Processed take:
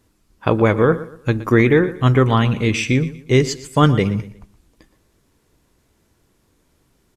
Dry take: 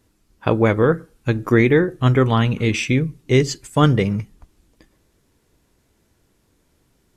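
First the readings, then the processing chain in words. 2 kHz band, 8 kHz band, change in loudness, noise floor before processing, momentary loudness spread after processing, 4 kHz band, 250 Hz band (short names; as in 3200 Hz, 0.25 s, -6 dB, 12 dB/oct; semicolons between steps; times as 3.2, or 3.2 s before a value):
+1.5 dB, +1.0 dB, +1.0 dB, -64 dBFS, 8 LU, +1.0 dB, +1.0 dB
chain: bell 1100 Hz +2.5 dB 0.4 oct; feedback echo 0.119 s, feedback 33%, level -16 dB; gain +1 dB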